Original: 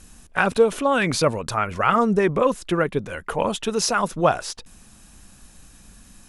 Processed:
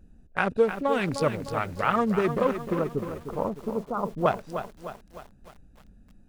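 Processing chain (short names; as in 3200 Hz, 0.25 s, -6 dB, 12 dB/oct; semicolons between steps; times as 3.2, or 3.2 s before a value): Wiener smoothing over 41 samples; 2.79–4.26 steep low-pass 1300 Hz 72 dB/oct; lo-fi delay 0.305 s, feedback 55%, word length 7-bit, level -9 dB; gain -4.5 dB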